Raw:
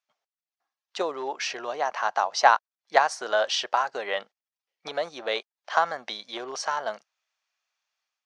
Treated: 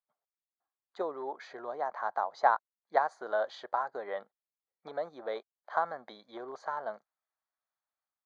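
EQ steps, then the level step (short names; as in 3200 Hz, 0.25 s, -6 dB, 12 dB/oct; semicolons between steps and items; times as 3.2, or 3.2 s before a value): running mean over 16 samples; -5.5 dB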